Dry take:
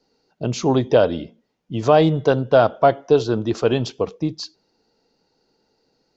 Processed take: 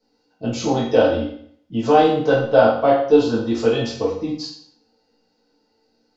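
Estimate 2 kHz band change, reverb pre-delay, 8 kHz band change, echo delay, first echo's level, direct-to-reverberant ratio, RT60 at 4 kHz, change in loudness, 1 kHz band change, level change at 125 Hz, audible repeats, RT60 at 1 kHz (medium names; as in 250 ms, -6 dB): +2.5 dB, 4 ms, no reading, no echo, no echo, -8.5 dB, 0.55 s, +0.5 dB, +1.5 dB, -5.0 dB, no echo, 0.60 s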